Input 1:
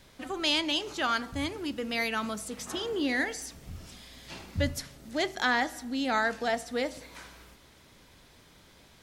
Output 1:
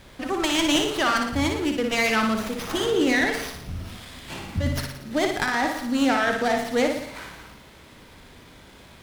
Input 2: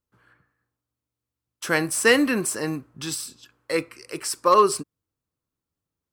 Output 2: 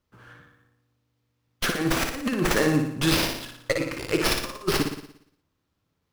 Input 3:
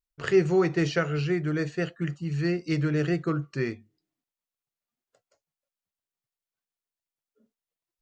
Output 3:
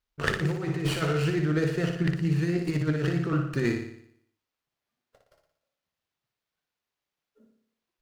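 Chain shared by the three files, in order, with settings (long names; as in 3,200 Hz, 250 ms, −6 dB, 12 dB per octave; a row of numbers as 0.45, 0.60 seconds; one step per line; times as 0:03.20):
compressor whose output falls as the input rises −28 dBFS, ratio −0.5
flutter between parallel walls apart 10 metres, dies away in 0.67 s
windowed peak hold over 5 samples
normalise the peak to −9 dBFS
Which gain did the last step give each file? +7.5, +3.5, +2.0 decibels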